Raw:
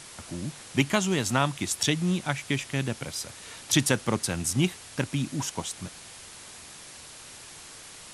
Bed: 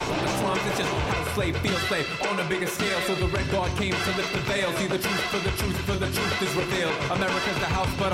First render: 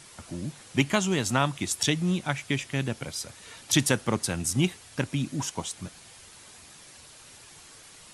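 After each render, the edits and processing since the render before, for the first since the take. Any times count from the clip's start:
broadband denoise 6 dB, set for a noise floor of −46 dBFS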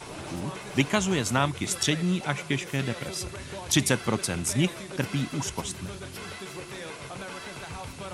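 mix in bed −13.5 dB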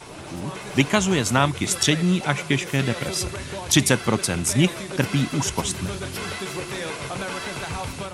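automatic gain control gain up to 8.5 dB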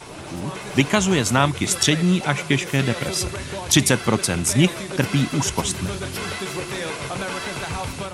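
level +2 dB
brickwall limiter −2 dBFS, peak gain reduction 2 dB

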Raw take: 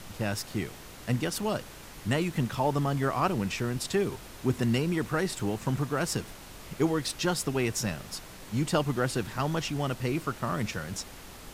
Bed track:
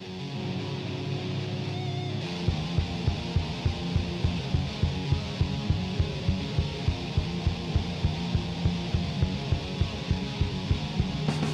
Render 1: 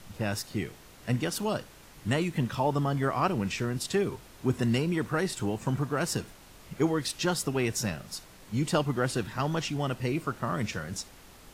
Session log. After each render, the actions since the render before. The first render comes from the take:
noise reduction from a noise print 6 dB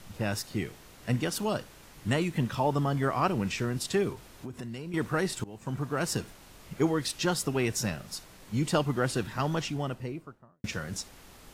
0:04.12–0:04.94: downward compressor, threshold −36 dBFS
0:05.44–0:06.23: fade in equal-power, from −22.5 dB
0:09.49–0:10.64: fade out and dull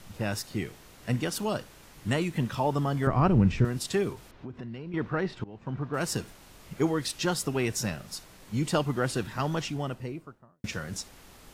0:03.07–0:03.65: RIAA equalisation playback
0:04.31–0:05.94: high-frequency loss of the air 250 metres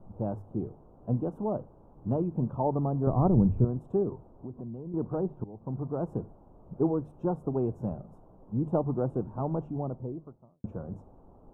inverse Chebyshev low-pass filter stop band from 1,800 Hz, stop band 40 dB
mains-hum notches 50/100/150 Hz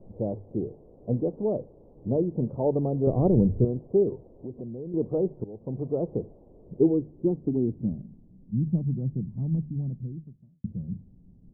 low-pass filter sweep 490 Hz → 180 Hz, 0:06.43–0:08.68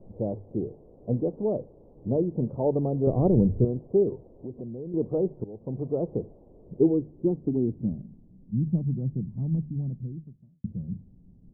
no processing that can be heard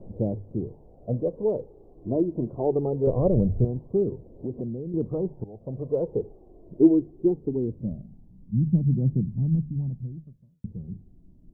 phase shifter 0.22 Hz, delay 3.2 ms, feedback 51%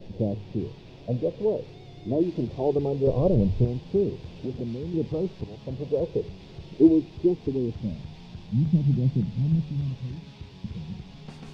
mix in bed track −15 dB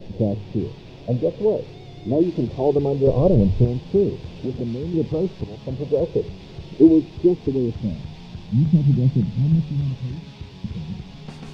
level +5.5 dB
brickwall limiter −3 dBFS, peak gain reduction 1.5 dB

